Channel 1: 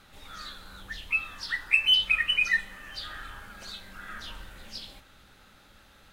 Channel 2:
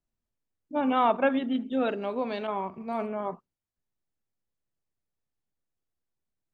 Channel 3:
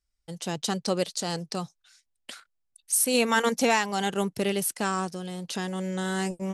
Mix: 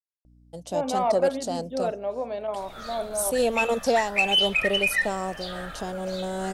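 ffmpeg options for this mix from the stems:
-filter_complex "[0:a]agate=range=-33dB:threshold=-44dB:ratio=3:detection=peak,adelay=2450,volume=0.5dB[a];[1:a]acontrast=80,acrusher=bits=10:mix=0:aa=0.000001,volume=-15.5dB[b];[2:a]equalizer=f=1.8k:t=o:w=1.4:g=-7.5,aeval=exprs='val(0)+0.00316*(sin(2*PI*60*n/s)+sin(2*PI*2*60*n/s)/2+sin(2*PI*3*60*n/s)/3+sin(2*PI*4*60*n/s)/4+sin(2*PI*5*60*n/s)/5)':c=same,adelay=250,volume=-4.5dB[c];[a][b][c]amix=inputs=3:normalize=0,equalizer=f=620:t=o:w=0.88:g=14,asoftclip=type=tanh:threshold=-11.5dB"

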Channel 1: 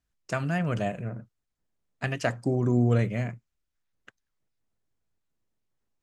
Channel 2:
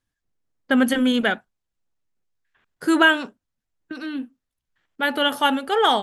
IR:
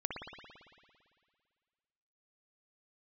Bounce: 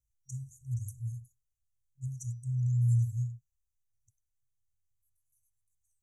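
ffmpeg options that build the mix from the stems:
-filter_complex "[0:a]bandreject=f=168.7:t=h:w=4,bandreject=f=337.4:t=h:w=4,bandreject=f=506.1:t=h:w=4,bandreject=f=674.8:t=h:w=4,bandreject=f=843.5:t=h:w=4,bandreject=f=1.0122k:t=h:w=4,bandreject=f=1.1809k:t=h:w=4,bandreject=f=1.3496k:t=h:w=4,bandreject=f=1.5183k:t=h:w=4,bandreject=f=1.687k:t=h:w=4,bandreject=f=1.8557k:t=h:w=4,bandreject=f=2.0244k:t=h:w=4,bandreject=f=2.1931k:t=h:w=4,bandreject=f=2.3618k:t=h:w=4,bandreject=f=2.5305k:t=h:w=4,bandreject=f=2.6992k:t=h:w=4,bandreject=f=2.8679k:t=h:w=4,bandreject=f=3.0366k:t=h:w=4,bandreject=f=3.2053k:t=h:w=4,bandreject=f=3.374k:t=h:w=4,bandreject=f=3.5427k:t=h:w=4,bandreject=f=3.7114k:t=h:w=4,bandreject=f=3.8801k:t=h:w=4,bandreject=f=4.0488k:t=h:w=4,bandreject=f=4.2175k:t=h:w=4,bandreject=f=4.3862k:t=h:w=4,bandreject=f=4.5549k:t=h:w=4,bandreject=f=4.7236k:t=h:w=4,bandreject=f=4.8923k:t=h:w=4,bandreject=f=5.061k:t=h:w=4,bandreject=f=5.2297k:t=h:w=4,bandreject=f=5.3984k:t=h:w=4,bandreject=f=5.5671k:t=h:w=4,bandreject=f=5.7358k:t=h:w=4,bandreject=f=5.9045k:t=h:w=4,volume=-1dB,asplit=2[a][b];[1:a]volume=-17dB,asplit=2[c][d];[d]volume=-19.5dB[e];[b]apad=whole_len=265720[f];[c][f]sidechaingate=range=-31dB:threshold=-58dB:ratio=16:detection=peak[g];[2:a]atrim=start_sample=2205[h];[e][h]afir=irnorm=-1:irlink=0[i];[a][g][i]amix=inputs=3:normalize=0,afftfilt=real='re*(1-between(b*sr/4096,130,5700))':imag='im*(1-between(b*sr/4096,130,5700))':win_size=4096:overlap=0.75"

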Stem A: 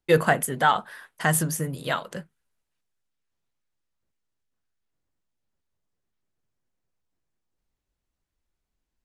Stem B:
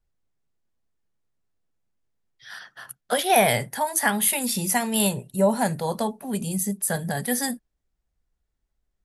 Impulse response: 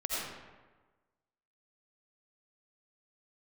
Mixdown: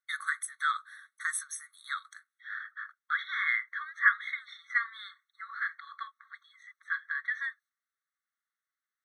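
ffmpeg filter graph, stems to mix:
-filter_complex "[0:a]volume=1dB[a];[1:a]lowpass=f=2.4k:w=0.5412,lowpass=f=2.4k:w=1.3066,volume=2.5dB,asplit=2[b][c];[c]apad=whole_len=398795[d];[a][d]sidechaingate=range=-7dB:threshold=-46dB:ratio=16:detection=peak[e];[e][b]amix=inputs=2:normalize=0,afftfilt=real='re*eq(mod(floor(b*sr/1024/1100),2),1)':imag='im*eq(mod(floor(b*sr/1024/1100),2),1)':win_size=1024:overlap=0.75"

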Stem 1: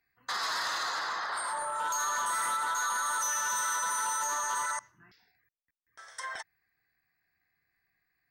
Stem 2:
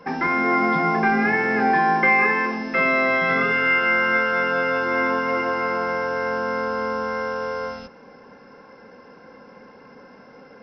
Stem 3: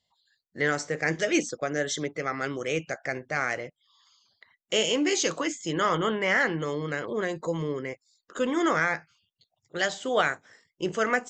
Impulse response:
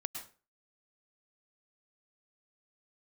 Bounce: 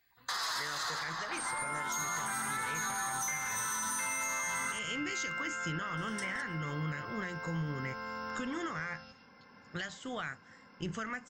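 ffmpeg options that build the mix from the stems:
-filter_complex "[0:a]volume=2dB,asplit=2[a][b];[b]volume=-20.5dB[c];[1:a]highpass=f=1.2k:p=1,acompressor=threshold=-45dB:ratio=1.5,adelay=1250,volume=-2.5dB,asplit=2[d][e];[e]volume=-6.5dB[f];[2:a]equalizer=f=1.5k:t=o:w=2.1:g=8,volume=-10dB,asplit=2[g][h];[h]apad=whole_len=523687[i];[d][i]sidechaincompress=threshold=-39dB:ratio=8:attack=16:release=1170[j];[a][g]amix=inputs=2:normalize=0,highshelf=f=5k:g=7.5,alimiter=level_in=3dB:limit=-24dB:level=0:latency=1:release=438,volume=-3dB,volume=0dB[k];[3:a]atrim=start_sample=2205[l];[c][f]amix=inputs=2:normalize=0[m];[m][l]afir=irnorm=-1:irlink=0[n];[j][k][n]amix=inputs=3:normalize=0,asubboost=boost=11.5:cutoff=140,acompressor=threshold=-32dB:ratio=6"

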